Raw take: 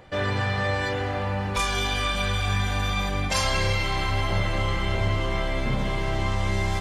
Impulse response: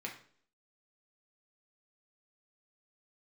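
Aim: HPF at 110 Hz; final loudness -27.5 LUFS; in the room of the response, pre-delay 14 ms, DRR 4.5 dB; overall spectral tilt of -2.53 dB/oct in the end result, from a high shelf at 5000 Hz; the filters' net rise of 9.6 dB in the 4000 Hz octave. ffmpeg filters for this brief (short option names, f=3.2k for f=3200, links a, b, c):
-filter_complex "[0:a]highpass=110,equalizer=f=4k:t=o:g=9,highshelf=f=5k:g=7,asplit=2[a][b];[1:a]atrim=start_sample=2205,adelay=14[c];[b][c]afir=irnorm=-1:irlink=0,volume=-5dB[d];[a][d]amix=inputs=2:normalize=0,volume=-6.5dB"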